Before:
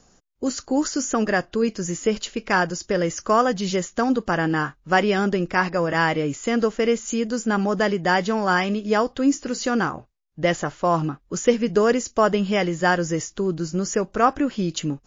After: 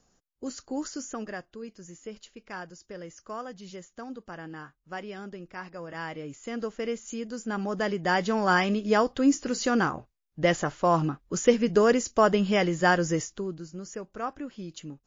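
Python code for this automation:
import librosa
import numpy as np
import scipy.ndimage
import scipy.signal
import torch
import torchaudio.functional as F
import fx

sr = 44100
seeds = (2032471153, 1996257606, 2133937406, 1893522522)

y = fx.gain(x, sr, db=fx.line((0.93, -11.0), (1.59, -19.0), (5.59, -19.0), (6.78, -11.0), (7.36, -11.0), (8.49, -2.5), (13.16, -2.5), (13.68, -15.0)))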